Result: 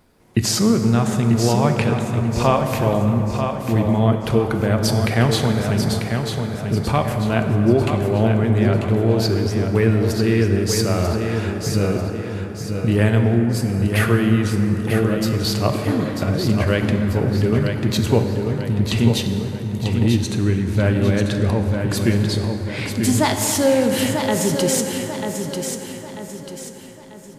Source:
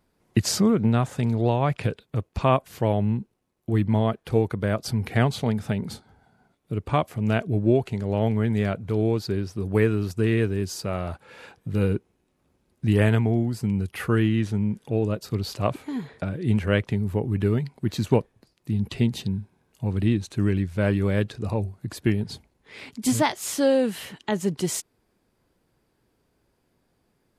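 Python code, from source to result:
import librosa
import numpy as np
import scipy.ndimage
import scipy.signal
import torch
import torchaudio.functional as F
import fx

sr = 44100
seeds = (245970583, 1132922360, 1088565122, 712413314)

p1 = fx.over_compress(x, sr, threshold_db=-33.0, ratio=-1.0)
p2 = x + (p1 * 10.0 ** (-2.5 / 20.0))
p3 = fx.echo_feedback(p2, sr, ms=942, feedback_pct=40, wet_db=-6.5)
p4 = fx.rev_plate(p3, sr, seeds[0], rt60_s=4.4, hf_ratio=0.4, predelay_ms=0, drr_db=4.5)
y = p4 * 10.0 ** (2.0 / 20.0)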